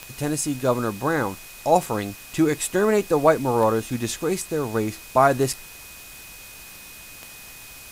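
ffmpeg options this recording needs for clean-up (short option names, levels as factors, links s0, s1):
-af "adeclick=t=4,bandreject=f=2500:w=30,afwtdn=0.0079"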